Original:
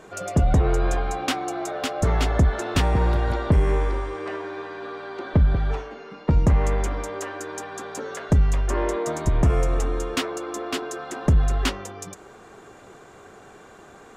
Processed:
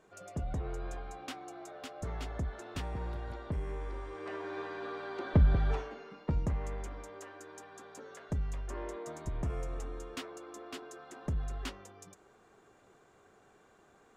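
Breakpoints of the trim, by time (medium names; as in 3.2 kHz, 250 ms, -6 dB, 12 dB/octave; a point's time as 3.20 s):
3.76 s -18 dB
4.58 s -6 dB
5.84 s -6 dB
6.60 s -16.5 dB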